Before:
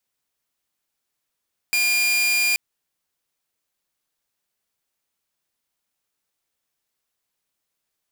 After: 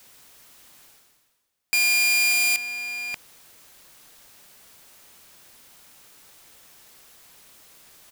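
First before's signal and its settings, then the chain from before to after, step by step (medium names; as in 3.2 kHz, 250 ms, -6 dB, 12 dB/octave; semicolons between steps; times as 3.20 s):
tone saw 2.41 kHz -15 dBFS 0.83 s
echo from a far wall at 100 m, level -7 dB; reverse; upward compressor, threshold -29 dBFS; reverse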